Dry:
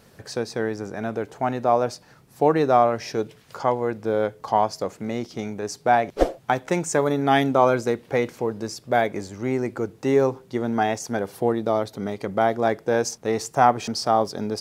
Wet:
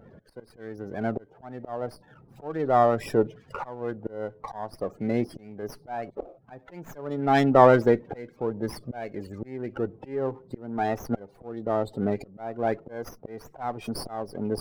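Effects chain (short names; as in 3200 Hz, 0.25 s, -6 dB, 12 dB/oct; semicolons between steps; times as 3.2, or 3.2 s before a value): in parallel at -6 dB: hard clip -12.5 dBFS, distortion -15 dB; on the sum: auto swell 0.713 s; loudest bins only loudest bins 32; running maximum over 5 samples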